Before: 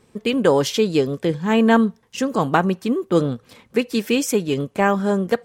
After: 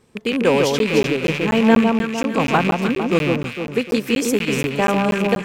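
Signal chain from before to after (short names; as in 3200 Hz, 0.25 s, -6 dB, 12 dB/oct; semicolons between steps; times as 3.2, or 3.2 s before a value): rattling part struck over -30 dBFS, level -13 dBFS; on a send: echo with dull and thin repeats by turns 0.151 s, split 1300 Hz, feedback 69%, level -3 dB; on the sum: crackling interface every 0.24 s, samples 512, zero, from 0.79; gain -1 dB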